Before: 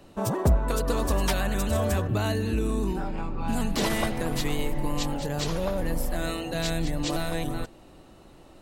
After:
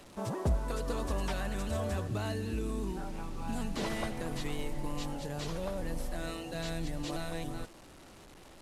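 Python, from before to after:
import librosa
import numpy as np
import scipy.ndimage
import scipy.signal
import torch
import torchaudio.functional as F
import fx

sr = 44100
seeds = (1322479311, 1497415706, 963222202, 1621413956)

y = fx.delta_mod(x, sr, bps=64000, step_db=-39.0)
y = y * 10.0 ** (-8.5 / 20.0)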